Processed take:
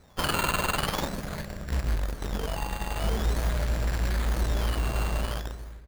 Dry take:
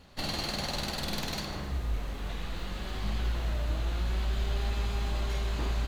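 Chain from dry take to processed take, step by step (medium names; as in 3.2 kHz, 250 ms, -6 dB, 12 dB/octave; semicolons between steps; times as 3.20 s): fade out at the end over 0.77 s; 2.23–3.33 s: whistle 3.6 kHz -43 dBFS; FFT filter 160 Hz 0 dB, 310 Hz -10 dB, 610 Hz +1 dB, 1.1 kHz -30 dB, 1.6 kHz +6 dB, 2.3 kHz -2 dB, 4.5 kHz +7 dB, 9.2 kHz -9 dB; in parallel at -4.5 dB: bit crusher 5-bit; 1.08–1.68 s: on the sum: peaking EQ 3.8 kHz -11 dB 1.9 oct; on a send at -11.5 dB: reverberation RT60 0.90 s, pre-delay 37 ms; on the sum: decimation with a swept rate 11×, swing 100% 0.45 Hz; echo from a far wall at 230 m, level -24 dB; sliding maximum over 9 samples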